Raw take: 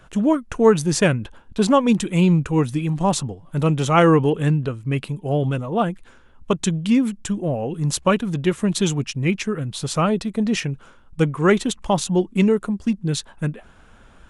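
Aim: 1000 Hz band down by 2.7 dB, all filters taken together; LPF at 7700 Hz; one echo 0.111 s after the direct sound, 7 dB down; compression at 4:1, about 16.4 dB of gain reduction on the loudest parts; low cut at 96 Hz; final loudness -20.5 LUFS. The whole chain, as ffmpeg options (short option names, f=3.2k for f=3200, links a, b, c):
-af "highpass=96,lowpass=7.7k,equalizer=f=1k:t=o:g=-3.5,acompressor=threshold=-30dB:ratio=4,aecho=1:1:111:0.447,volume=11.5dB"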